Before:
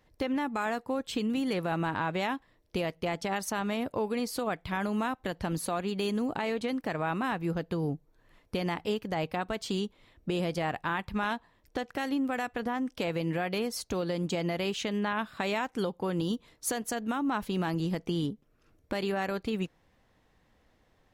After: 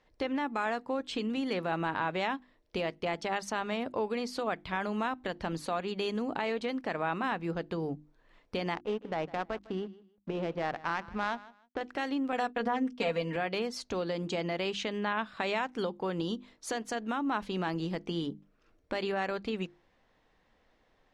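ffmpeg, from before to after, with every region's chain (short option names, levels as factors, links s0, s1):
-filter_complex "[0:a]asettb=1/sr,asplit=3[s0][s1][s2];[s0]atrim=end=8.744[s3];[s1]atrim=start=8.74:end=11.81,asetpts=PTS-STARTPTS,afade=t=in:d=0.004:c=qsin,afade=t=out:st=3.066:d=0.004:c=qsin,adynamicsmooth=sensitivity=2.5:basefreq=940,aeval=exprs='sgn(val(0))*max(abs(val(0))-0.00211,0)':c=same,aecho=1:1:155|310:0.112|0.0247,atrim=end_sample=135387[s4];[s2]atrim=start=11.806[s5];[s3][s4]acrossfade=d=0.004:c1=hsin:c2=qsin[s6];[s6][s5]acrossfade=d=0.004:c1=qsin:c2=hsin,asettb=1/sr,asplit=3[s7][s8][s9];[s7]atrim=end=12.324[s10];[s8]atrim=start=12.32:end=13.36,asetpts=PTS-STARTPTS,afade=t=in:d=0.004:c=qsin,afade=t=out:st=1.036:d=0.004:c=qsin,bandreject=f=60:t=h:w=6,bandreject=f=120:t=h:w=6,bandreject=f=180:t=h:w=6,bandreject=f=240:t=h:w=6,bandreject=f=300:t=h:w=6,bandreject=f=360:t=h:w=6,bandreject=f=420:t=h:w=6,bandreject=f=480:t=h:w=6,bandreject=f=540:t=h:w=6,agate=range=0.0224:threshold=0.0112:ratio=3:release=100:detection=peak,aecho=1:1:4.3:0.79,atrim=end_sample=45864[s11];[s9]atrim=start=13.356[s12];[s10][s11]acrossfade=d=0.004:c1=hsin:c2=qsin[s13];[s13][s12]acrossfade=d=0.004:c1=qsin:c2=hsin,lowpass=5500,equalizer=f=96:w=0.67:g=-8,bandreject=f=50:t=h:w=6,bandreject=f=100:t=h:w=6,bandreject=f=150:t=h:w=6,bandreject=f=200:t=h:w=6,bandreject=f=250:t=h:w=6,bandreject=f=300:t=h:w=6,bandreject=f=350:t=h:w=6"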